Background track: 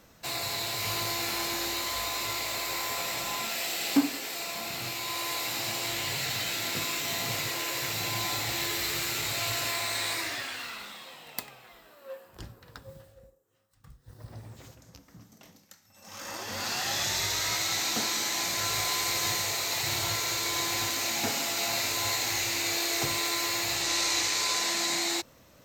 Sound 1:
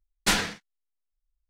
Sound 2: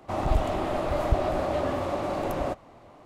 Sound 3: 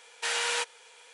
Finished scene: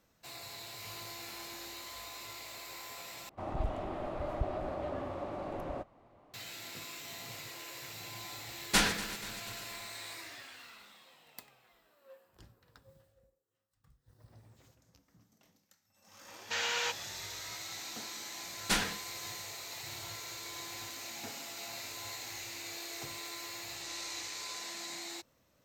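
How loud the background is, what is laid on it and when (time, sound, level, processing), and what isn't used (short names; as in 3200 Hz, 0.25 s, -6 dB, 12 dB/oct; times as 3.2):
background track -14 dB
3.29 replace with 2 -10.5 dB + high shelf 4400 Hz -10 dB
8.47 add 1 -3.5 dB + regenerating reverse delay 0.12 s, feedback 76%, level -14 dB
16.28 add 3 -3.5 dB + elliptic low-pass 6900 Hz
18.43 add 1 -7 dB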